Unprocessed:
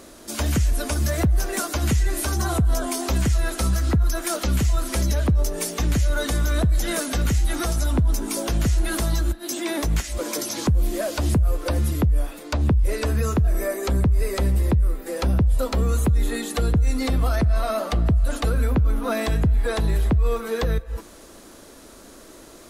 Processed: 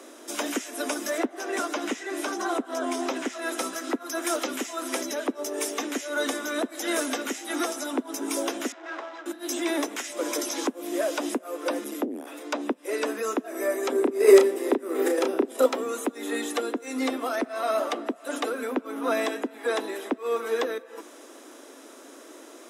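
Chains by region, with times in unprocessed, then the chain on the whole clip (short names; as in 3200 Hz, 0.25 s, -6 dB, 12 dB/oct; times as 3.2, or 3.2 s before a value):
1.18–3.42 high shelf 7700 Hz -11 dB + Doppler distortion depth 0.11 ms
8.72–9.26 median filter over 15 samples + BPF 720–6000 Hz + air absorption 73 m
11.84–12.27 high shelf 11000 Hz +5.5 dB + core saturation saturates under 190 Hz
13.92–15.66 transient shaper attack -2 dB, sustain +11 dB + bell 390 Hz +10 dB 0.4 oct + doubler 33 ms -6 dB
whole clip: steep high-pass 250 Hz 72 dB/oct; high shelf 11000 Hz -9 dB; notch 4400 Hz, Q 5.6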